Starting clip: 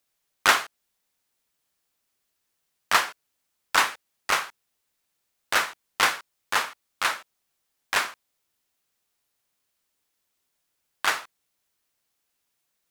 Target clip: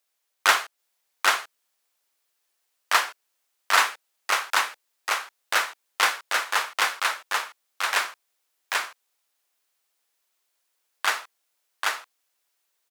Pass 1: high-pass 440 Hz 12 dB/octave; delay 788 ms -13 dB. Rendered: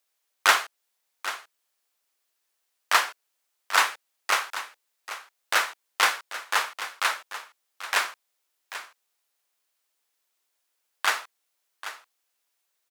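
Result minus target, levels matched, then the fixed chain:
echo-to-direct -11 dB
high-pass 440 Hz 12 dB/octave; delay 788 ms -2 dB

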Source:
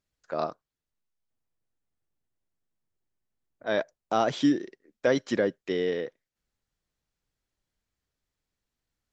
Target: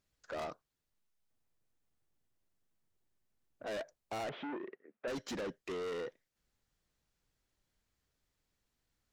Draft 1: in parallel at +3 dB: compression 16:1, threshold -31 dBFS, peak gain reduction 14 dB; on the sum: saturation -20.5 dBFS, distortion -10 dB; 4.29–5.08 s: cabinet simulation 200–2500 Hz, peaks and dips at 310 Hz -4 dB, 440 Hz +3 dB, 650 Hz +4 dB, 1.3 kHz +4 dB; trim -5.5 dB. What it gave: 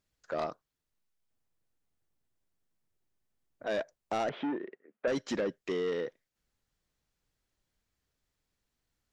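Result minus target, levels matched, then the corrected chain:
saturation: distortion -7 dB
in parallel at +3 dB: compression 16:1, threshold -31 dBFS, peak gain reduction 14 dB; on the sum: saturation -31.5 dBFS, distortion -4 dB; 4.29–5.08 s: cabinet simulation 200–2500 Hz, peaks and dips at 310 Hz -4 dB, 440 Hz +3 dB, 650 Hz +4 dB, 1.3 kHz +4 dB; trim -5.5 dB

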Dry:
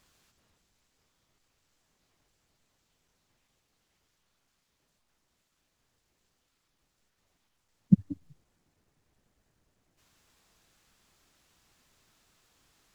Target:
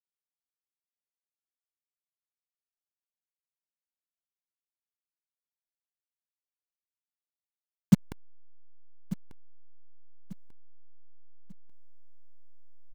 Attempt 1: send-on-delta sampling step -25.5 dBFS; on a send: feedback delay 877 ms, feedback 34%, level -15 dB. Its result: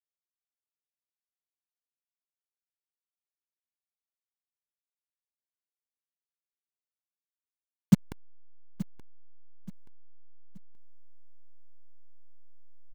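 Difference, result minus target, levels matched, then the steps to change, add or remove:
echo 315 ms early
change: feedback delay 1192 ms, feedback 34%, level -15 dB

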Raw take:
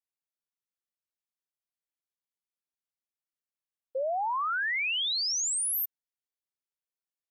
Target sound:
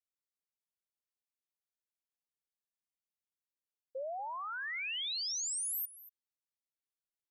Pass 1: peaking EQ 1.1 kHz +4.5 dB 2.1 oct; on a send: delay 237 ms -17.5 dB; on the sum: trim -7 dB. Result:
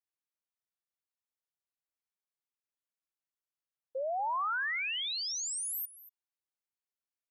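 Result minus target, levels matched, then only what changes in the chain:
1 kHz band +5.0 dB
change: peaking EQ 1.1 kHz -4 dB 2.1 oct

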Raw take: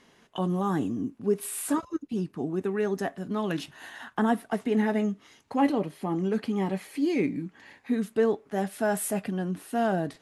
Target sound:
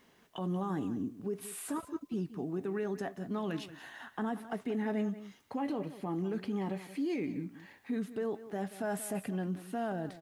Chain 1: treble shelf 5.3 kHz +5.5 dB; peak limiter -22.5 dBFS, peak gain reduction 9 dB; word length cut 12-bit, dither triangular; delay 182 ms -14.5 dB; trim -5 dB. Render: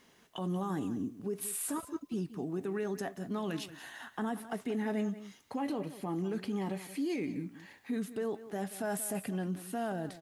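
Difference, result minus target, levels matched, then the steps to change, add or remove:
8 kHz band +6.0 dB
change: treble shelf 5.3 kHz -5.5 dB

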